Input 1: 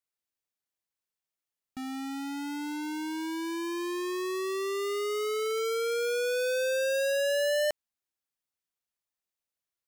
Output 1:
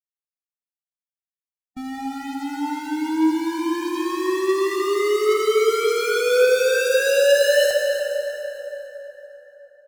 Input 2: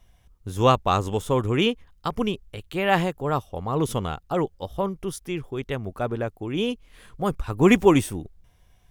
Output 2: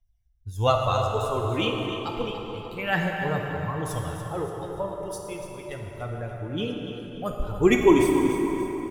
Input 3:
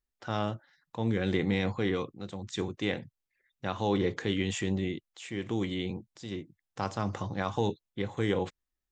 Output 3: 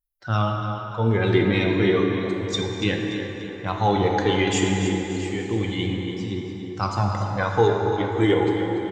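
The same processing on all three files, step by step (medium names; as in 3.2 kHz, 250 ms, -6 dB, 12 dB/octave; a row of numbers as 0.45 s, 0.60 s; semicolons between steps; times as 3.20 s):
expander on every frequency bin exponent 1.5; phaser 0.31 Hz, delay 3.3 ms, feedback 52%; feedback delay 289 ms, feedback 43%, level -11 dB; plate-style reverb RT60 4.2 s, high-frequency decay 0.55×, DRR 1 dB; peak normalisation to -6 dBFS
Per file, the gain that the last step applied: +7.5 dB, -3.0 dB, +9.0 dB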